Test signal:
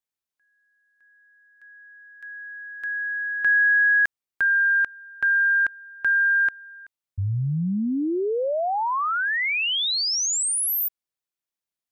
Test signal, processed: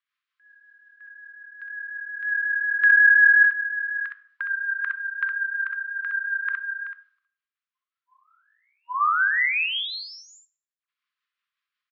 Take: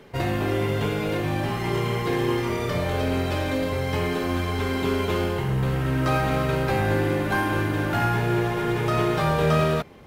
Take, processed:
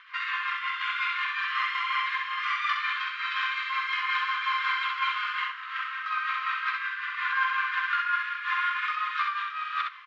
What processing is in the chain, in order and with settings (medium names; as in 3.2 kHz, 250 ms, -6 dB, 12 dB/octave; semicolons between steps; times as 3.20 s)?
treble shelf 4.5 kHz +6.5 dB; in parallel at +2 dB: peak limiter -21 dBFS; on the sum: compressor with a negative ratio -20 dBFS, ratio -0.5; rotary cabinet horn 5.5 Hz; brick-wall FIR band-pass 1–7.5 kHz; distance through air 440 m; on a send: early reflections 48 ms -17.5 dB, 64 ms -4 dB; on the sum: plate-style reverb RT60 0.6 s, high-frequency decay 0.7×, DRR 14 dB; trim +5 dB